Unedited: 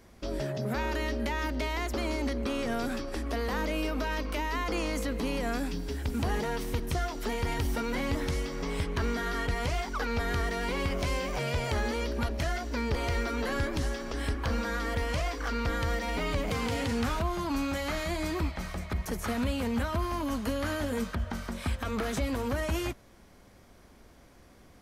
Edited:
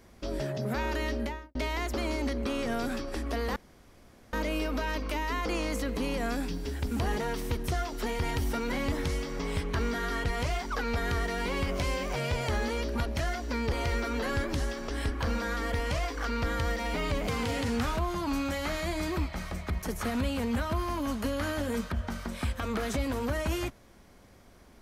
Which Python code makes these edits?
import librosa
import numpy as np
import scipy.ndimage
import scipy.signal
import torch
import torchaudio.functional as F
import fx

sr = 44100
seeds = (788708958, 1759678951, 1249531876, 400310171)

y = fx.studio_fade_out(x, sr, start_s=1.16, length_s=0.39)
y = fx.edit(y, sr, fx.insert_room_tone(at_s=3.56, length_s=0.77), tone=tone)